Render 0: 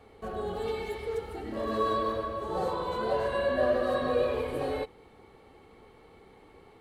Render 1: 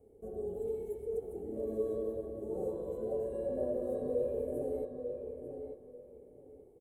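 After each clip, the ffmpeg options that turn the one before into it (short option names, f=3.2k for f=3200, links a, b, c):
-filter_complex "[0:a]firequalizer=gain_entry='entry(170,0);entry(430,6);entry(1100,-25)':delay=0.05:min_phase=1,aexciter=amount=14.2:drive=7.4:freq=6.8k,asplit=2[a][b];[b]adelay=893,lowpass=f=2.9k:p=1,volume=-6.5dB,asplit=2[c][d];[d]adelay=893,lowpass=f=2.9k:p=1,volume=0.23,asplit=2[e][f];[f]adelay=893,lowpass=f=2.9k:p=1,volume=0.23[g];[c][e][g]amix=inputs=3:normalize=0[h];[a][h]amix=inputs=2:normalize=0,volume=-8.5dB"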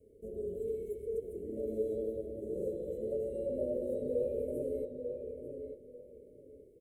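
-af "asuperstop=centerf=1100:order=20:qfactor=0.88"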